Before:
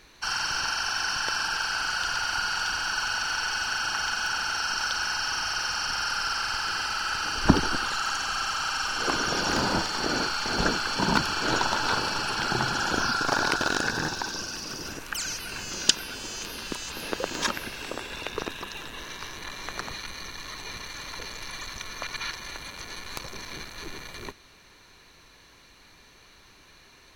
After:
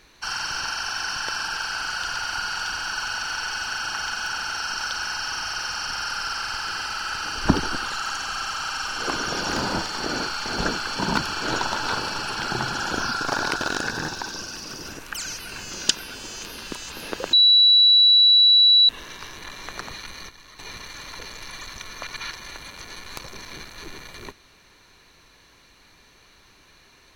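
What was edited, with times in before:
17.33–18.89 s: bleep 3.93 kHz -11 dBFS
20.29–20.59 s: gain -9 dB

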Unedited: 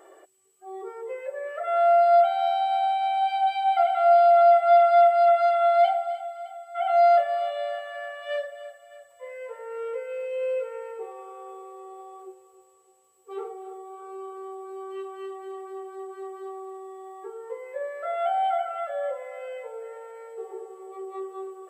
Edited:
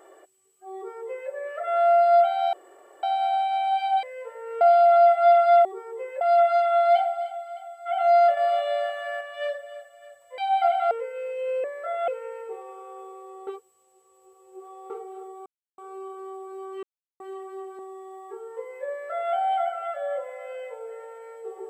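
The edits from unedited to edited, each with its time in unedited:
0.75–1.31 s: copy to 5.10 s
2.53 s: insert room tone 0.50 s
3.53–4.06 s: swap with 9.27–9.85 s
7.26–8.10 s: gain +4 dB
11.97–13.40 s: reverse
13.96 s: insert silence 0.32 s
15.01–15.38 s: mute
15.97–16.72 s: delete
17.83–18.27 s: copy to 10.58 s

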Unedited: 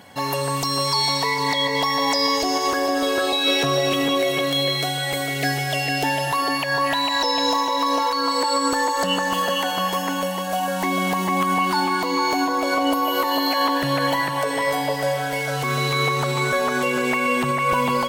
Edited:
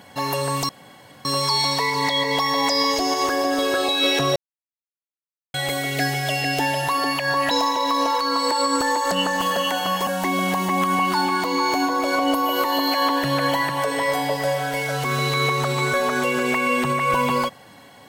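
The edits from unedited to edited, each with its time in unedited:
0.69 s: insert room tone 0.56 s
3.80–4.98 s: mute
6.95–7.43 s: delete
9.99–10.66 s: delete

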